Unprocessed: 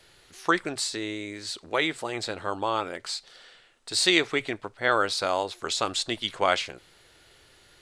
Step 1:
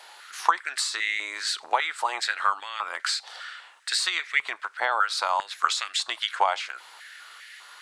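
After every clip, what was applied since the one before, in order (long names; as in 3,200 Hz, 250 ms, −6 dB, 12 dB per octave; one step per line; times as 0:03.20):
downward compressor 10 to 1, threshold −32 dBFS, peak gain reduction 16.5 dB
high-pass on a step sequencer 5 Hz 850–1,900 Hz
level +7.5 dB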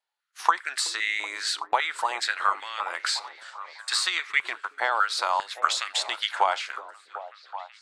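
noise gate −37 dBFS, range −39 dB
echo through a band-pass that steps 376 ms, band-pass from 330 Hz, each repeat 0.7 octaves, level −7.5 dB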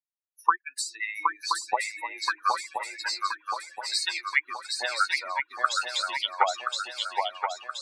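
spectral dynamics exaggerated over time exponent 3
feedback echo with a long and a short gap by turns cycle 1,025 ms, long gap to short 3 to 1, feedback 52%, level −4 dB
level +2.5 dB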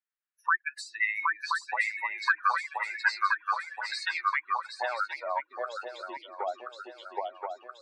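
brickwall limiter −18 dBFS, peak gain reduction 10.5 dB
band-pass filter sweep 1,600 Hz → 370 Hz, 0:03.99–0:06.07
level +8.5 dB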